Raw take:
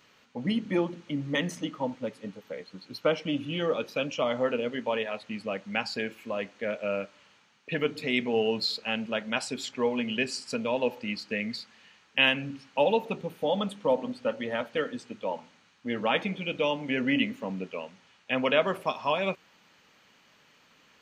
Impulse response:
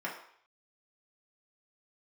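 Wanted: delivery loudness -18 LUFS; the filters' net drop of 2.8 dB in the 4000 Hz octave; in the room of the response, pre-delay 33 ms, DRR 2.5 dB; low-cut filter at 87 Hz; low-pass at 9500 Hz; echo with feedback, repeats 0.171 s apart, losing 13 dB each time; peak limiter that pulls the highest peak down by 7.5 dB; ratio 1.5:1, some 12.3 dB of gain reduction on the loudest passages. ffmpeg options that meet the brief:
-filter_complex "[0:a]highpass=87,lowpass=9.5k,equalizer=f=4k:t=o:g=-4,acompressor=threshold=-55dB:ratio=1.5,alimiter=level_in=5dB:limit=-24dB:level=0:latency=1,volume=-5dB,aecho=1:1:171|342|513:0.224|0.0493|0.0108,asplit=2[a][b];[1:a]atrim=start_sample=2205,adelay=33[c];[b][c]afir=irnorm=-1:irlink=0,volume=-7.5dB[d];[a][d]amix=inputs=2:normalize=0,volume=22.5dB"

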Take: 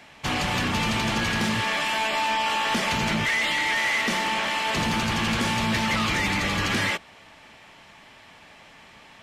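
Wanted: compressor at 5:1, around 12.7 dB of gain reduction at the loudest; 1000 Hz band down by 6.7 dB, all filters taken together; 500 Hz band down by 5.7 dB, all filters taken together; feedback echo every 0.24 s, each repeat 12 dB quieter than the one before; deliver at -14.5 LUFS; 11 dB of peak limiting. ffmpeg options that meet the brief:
-af "equalizer=f=500:t=o:g=-5.5,equalizer=f=1k:t=o:g=-6.5,acompressor=threshold=-38dB:ratio=5,alimiter=level_in=13dB:limit=-24dB:level=0:latency=1,volume=-13dB,aecho=1:1:240|480|720:0.251|0.0628|0.0157,volume=29dB"

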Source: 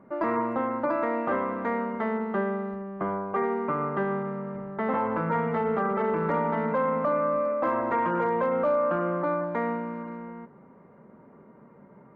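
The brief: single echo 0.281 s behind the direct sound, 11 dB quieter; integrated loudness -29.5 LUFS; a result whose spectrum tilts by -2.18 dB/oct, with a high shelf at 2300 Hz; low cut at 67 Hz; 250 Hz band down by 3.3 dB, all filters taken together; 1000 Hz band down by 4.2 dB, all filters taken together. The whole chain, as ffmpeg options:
-af "highpass=67,equalizer=f=250:t=o:g=-4,equalizer=f=1k:t=o:g=-6.5,highshelf=f=2.3k:g=8.5,aecho=1:1:281:0.282"

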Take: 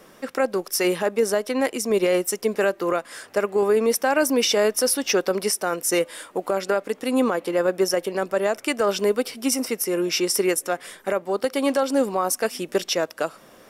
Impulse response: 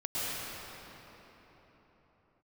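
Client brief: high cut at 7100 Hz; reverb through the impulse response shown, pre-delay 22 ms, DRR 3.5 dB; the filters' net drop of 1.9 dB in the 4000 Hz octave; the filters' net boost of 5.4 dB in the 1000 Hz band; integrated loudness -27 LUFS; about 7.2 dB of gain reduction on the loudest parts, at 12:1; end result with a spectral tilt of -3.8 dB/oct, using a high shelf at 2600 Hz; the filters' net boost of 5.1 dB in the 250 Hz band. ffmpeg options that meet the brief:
-filter_complex "[0:a]lowpass=7.1k,equalizer=f=250:t=o:g=6,equalizer=f=1k:t=o:g=6.5,highshelf=f=2.6k:g=4.5,equalizer=f=4k:t=o:g=-7.5,acompressor=threshold=-19dB:ratio=12,asplit=2[a][b];[1:a]atrim=start_sample=2205,adelay=22[c];[b][c]afir=irnorm=-1:irlink=0,volume=-11.5dB[d];[a][d]amix=inputs=2:normalize=0,volume=-3.5dB"

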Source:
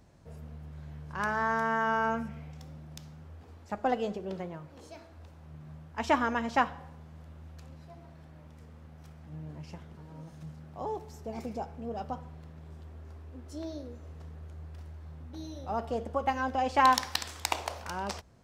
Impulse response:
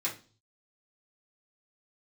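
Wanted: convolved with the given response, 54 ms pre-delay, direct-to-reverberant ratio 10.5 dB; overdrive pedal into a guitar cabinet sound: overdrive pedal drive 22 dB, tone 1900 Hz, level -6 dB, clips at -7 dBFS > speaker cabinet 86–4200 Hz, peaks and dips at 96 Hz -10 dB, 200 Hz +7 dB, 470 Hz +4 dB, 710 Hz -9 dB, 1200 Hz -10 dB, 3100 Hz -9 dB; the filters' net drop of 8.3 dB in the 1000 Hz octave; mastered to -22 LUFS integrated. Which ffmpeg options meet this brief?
-filter_complex "[0:a]equalizer=f=1k:t=o:g=-3.5,asplit=2[a][b];[1:a]atrim=start_sample=2205,adelay=54[c];[b][c]afir=irnorm=-1:irlink=0,volume=-15.5dB[d];[a][d]amix=inputs=2:normalize=0,asplit=2[e][f];[f]highpass=f=720:p=1,volume=22dB,asoftclip=type=tanh:threshold=-7dB[g];[e][g]amix=inputs=2:normalize=0,lowpass=f=1.9k:p=1,volume=-6dB,highpass=86,equalizer=f=96:t=q:w=4:g=-10,equalizer=f=200:t=q:w=4:g=7,equalizer=f=470:t=q:w=4:g=4,equalizer=f=710:t=q:w=4:g=-9,equalizer=f=1.2k:t=q:w=4:g=-10,equalizer=f=3.1k:t=q:w=4:g=-9,lowpass=f=4.2k:w=0.5412,lowpass=f=4.2k:w=1.3066,volume=5dB"

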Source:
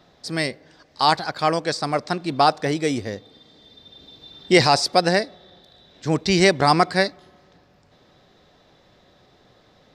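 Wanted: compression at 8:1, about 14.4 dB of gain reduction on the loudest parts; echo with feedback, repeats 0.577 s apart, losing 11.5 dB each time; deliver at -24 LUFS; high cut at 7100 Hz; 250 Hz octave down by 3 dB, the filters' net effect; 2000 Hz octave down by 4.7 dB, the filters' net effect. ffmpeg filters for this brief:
-af "lowpass=7.1k,equalizer=f=250:t=o:g=-5,equalizer=f=2k:t=o:g=-5.5,acompressor=threshold=-28dB:ratio=8,aecho=1:1:577|1154|1731:0.266|0.0718|0.0194,volume=10dB"

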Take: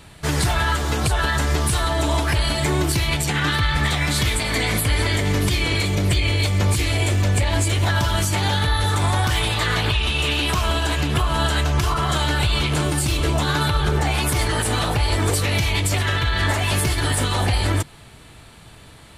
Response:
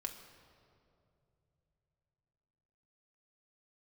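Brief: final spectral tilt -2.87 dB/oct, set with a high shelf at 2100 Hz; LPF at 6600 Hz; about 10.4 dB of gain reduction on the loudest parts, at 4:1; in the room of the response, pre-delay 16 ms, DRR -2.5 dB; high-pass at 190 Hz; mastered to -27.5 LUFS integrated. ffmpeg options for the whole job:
-filter_complex "[0:a]highpass=190,lowpass=6.6k,highshelf=f=2.1k:g=3.5,acompressor=threshold=-31dB:ratio=4,asplit=2[a][b];[1:a]atrim=start_sample=2205,adelay=16[c];[b][c]afir=irnorm=-1:irlink=0,volume=4dB[d];[a][d]amix=inputs=2:normalize=0,volume=-1dB"

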